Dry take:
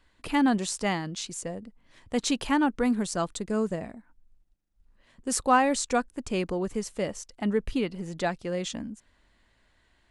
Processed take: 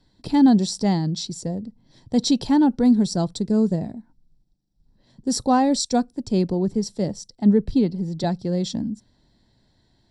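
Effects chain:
octave-band graphic EQ 125/1,000/2,000/4,000 Hz +11/−5/−5/+6 dB
convolution reverb RT60 0.20 s, pre-delay 3 ms, DRR 23 dB
0:05.79–0:08.24: multiband upward and downward expander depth 40%
level −5.5 dB

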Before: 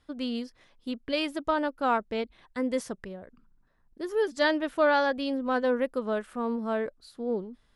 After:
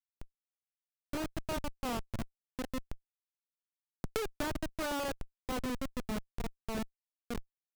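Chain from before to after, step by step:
spectral magnitudes quantised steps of 30 dB
comparator with hysteresis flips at −24.5 dBFS
0:04.04–0:04.69: multiband upward and downward compressor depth 100%
level −4 dB

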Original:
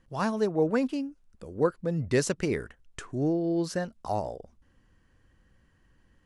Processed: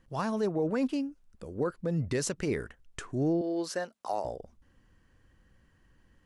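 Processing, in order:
0:03.41–0:04.25: high-pass filter 390 Hz 12 dB per octave
brickwall limiter −21 dBFS, peak gain reduction 9 dB

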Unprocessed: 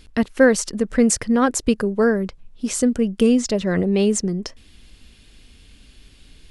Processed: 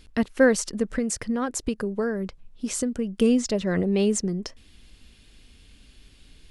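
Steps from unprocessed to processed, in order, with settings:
0:00.95–0:03.17: downward compressor 5 to 1, threshold −19 dBFS, peak gain reduction 8 dB
level −4 dB

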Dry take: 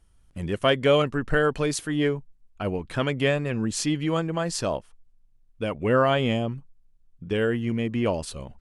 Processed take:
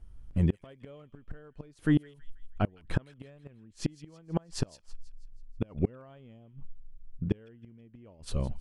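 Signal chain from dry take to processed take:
spectral tilt −2.5 dB per octave
gate with flip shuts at −14 dBFS, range −33 dB
delay with a high-pass on its return 162 ms, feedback 49%, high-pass 2,500 Hz, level −15 dB

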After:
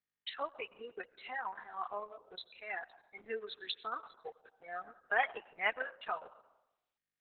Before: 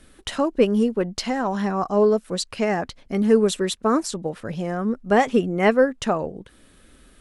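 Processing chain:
noise reduction from a noise print of the clip's start 30 dB
high-pass filter 990 Hz 12 dB per octave
amplitude tremolo 2.1 Hz, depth 74%
spectral tilt +3 dB per octave
in parallel at +2.5 dB: downward compressor 16 to 1, threshold −35 dBFS, peak gain reduction 19.5 dB
on the sum: dead-zone distortion −52 dBFS
moving average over 7 samples
on a send at −16.5 dB: parametric band 2,100 Hz −12.5 dB 0.39 octaves + convolution reverb RT60 0.85 s, pre-delay 60 ms
on the sum: level −7.5 dB
Opus 6 kbit/s 48,000 Hz

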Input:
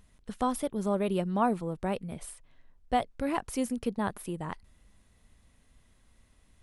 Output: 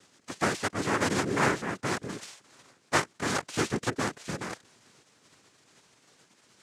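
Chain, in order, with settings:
compressing power law on the bin magnitudes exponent 0.59
cochlear-implant simulation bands 3
level +1.5 dB

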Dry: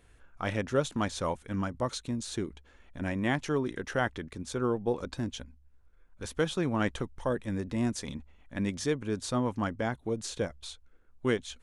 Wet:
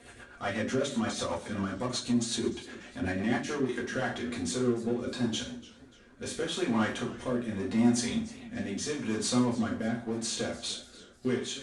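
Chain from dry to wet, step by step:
high-pass filter 340 Hz 6 dB per octave
downward compressor 2 to 1, threshold −40 dBFS, peak gain reduction 9.5 dB
power curve on the samples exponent 0.7
downsampling to 22,050 Hz
convolution reverb RT60 0.45 s, pre-delay 4 ms, DRR −4.5 dB
rotating-speaker cabinet horn 8 Hz, later 0.8 Hz, at 0:03.16
feedback echo with a swinging delay time 296 ms, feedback 42%, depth 154 cents, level −18.5 dB

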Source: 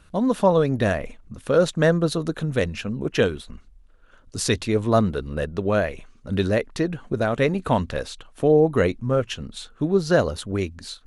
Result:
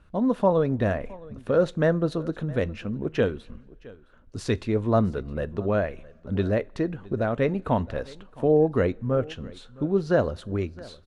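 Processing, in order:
low-pass filter 1,500 Hz 6 dB per octave
single-tap delay 665 ms −21.5 dB
coupled-rooms reverb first 0.24 s, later 2 s, from −21 dB, DRR 18 dB
level −2.5 dB

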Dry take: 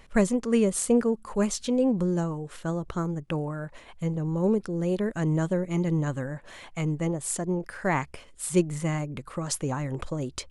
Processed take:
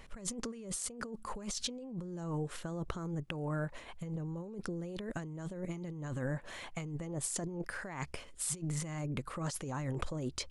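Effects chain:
dynamic equaliser 5,200 Hz, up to +5 dB, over −49 dBFS, Q 1.2
compressor whose output falls as the input rises −33 dBFS, ratio −1
level −6.5 dB

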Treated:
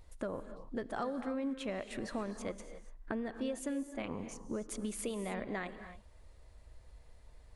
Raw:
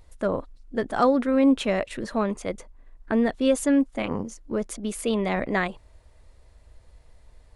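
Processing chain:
downward compressor 6 to 1, threshold −31 dBFS, peak gain reduction 15 dB
convolution reverb, pre-delay 3 ms, DRR 10 dB
level −4.5 dB

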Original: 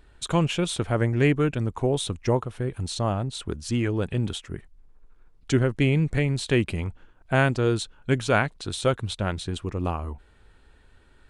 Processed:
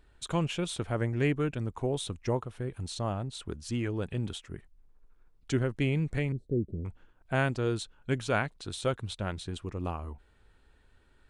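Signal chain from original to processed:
0:06.32–0:06.85: inverse Chebyshev low-pass filter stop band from 950 Hz, stop band 40 dB
level −7 dB

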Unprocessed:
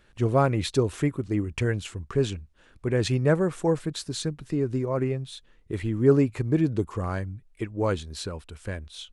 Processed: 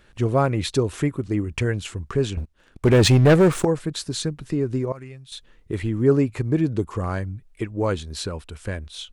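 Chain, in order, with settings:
0:02.37–0:03.65: leveller curve on the samples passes 3
0:04.92–0:05.32: guitar amp tone stack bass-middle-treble 5-5-5
in parallel at −2.5 dB: downward compressor, threshold −29 dBFS, peak gain reduction 15 dB

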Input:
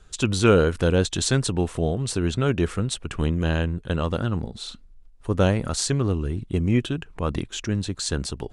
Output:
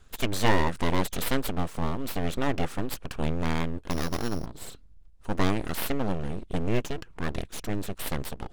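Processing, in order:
0:03.90–0:04.46: samples sorted by size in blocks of 8 samples
full-wave rectification
level −2.5 dB

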